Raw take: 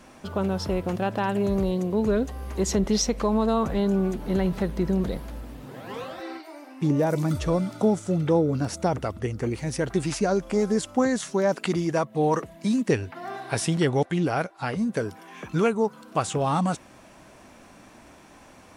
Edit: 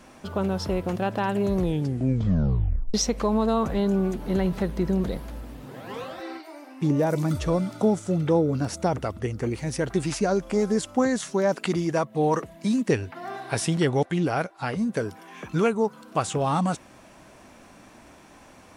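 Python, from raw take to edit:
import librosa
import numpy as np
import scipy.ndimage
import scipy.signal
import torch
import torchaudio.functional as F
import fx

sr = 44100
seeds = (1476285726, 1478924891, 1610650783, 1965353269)

y = fx.edit(x, sr, fx.tape_stop(start_s=1.53, length_s=1.41), tone=tone)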